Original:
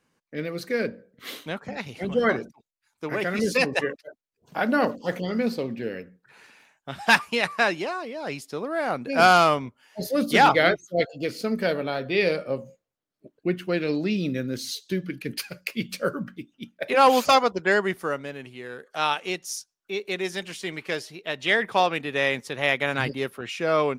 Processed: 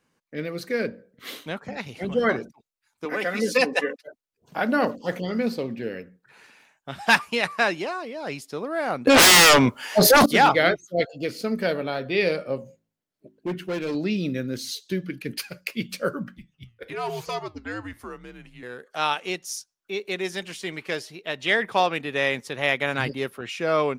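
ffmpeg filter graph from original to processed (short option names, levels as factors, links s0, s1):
-filter_complex "[0:a]asettb=1/sr,asplit=3[s0][s1][s2];[s0]atrim=end=3.054[s3];[s1]atrim=start=3.05:end=4.06,asetpts=PTS-STARTPTS,afade=t=in:d=0.004:c=qsin,afade=t=out:st=1.006:d=0.004:c=qsin,highpass=250,aecho=1:1:4:0.55,atrim=end_sample=44541[s4];[s2]atrim=start=4.056[s5];[s3][s4]acrossfade=d=0.004:c1=hsin:c2=qsin[s6];[s6][s5]acrossfade=d=0.004:c1=qsin:c2=hsin,asettb=1/sr,asplit=3[s7][s8][s9];[s7]atrim=end=9.074[s10];[s8]atrim=start=9.07:end=10.26,asetpts=PTS-STARTPTS,afade=t=in:d=0.004:c=qsin,afade=t=out:st=1.186:d=0.004:c=qsin,aeval=exprs='0.562*sin(PI/2*8.91*val(0)/0.562)':c=same,acompressor=threshold=0.282:ratio=4:attack=3.2:release=140:knee=1:detection=peak,lowshelf=f=160:g=-9[s11];[s9]atrim=start=10.256[s12];[s10][s11]acrossfade=d=0.004:c1=hsin:c2=qsin[s13];[s13][s12]acrossfade=d=0.004:c1=qsin:c2=hsin,asettb=1/sr,asplit=3[s14][s15][s16];[s14]atrim=end=12.584[s17];[s15]atrim=start=12.58:end=13.95,asetpts=PTS-STARTPTS,afade=t=in:d=0.004:c=qsin,afade=t=out:st=1.366:d=0.004:c=qsin,volume=15,asoftclip=hard,volume=0.0668,bandreject=f=1200:w=11,bandreject=f=54:t=h:w=4,bandreject=f=108:t=h:w=4,bandreject=f=162:t=h:w=4,bandreject=f=216:t=h:w=4,bandreject=f=270:t=h:w=4,bandreject=f=324:t=h:w=4,bandreject=f=378:t=h:w=4[s18];[s16]atrim=start=13.946[s19];[s17][s18]acrossfade=d=0.004:c1=hsin:c2=qsin[s20];[s20][s19]acrossfade=d=0.004:c1=qsin:c2=hsin,asettb=1/sr,asplit=3[s21][s22][s23];[s21]atrim=end=16.374[s24];[s22]atrim=start=16.37:end=18.63,asetpts=PTS-STARTPTS,afade=t=in:d=0.004:c=qsin,afade=t=out:st=2.256:d=0.004:c=qsin,acompressor=threshold=0.0141:ratio=1.5:attack=3.2:release=140:knee=1:detection=peak,afreqshift=-100,flanger=delay=5.7:depth=3.5:regen=86:speed=1:shape=sinusoidal[s25];[s23]atrim=start=18.626[s26];[s24][s25]acrossfade=d=0.004:c1=hsin:c2=qsin[s27];[s27][s26]acrossfade=d=0.004:c1=qsin:c2=hsin"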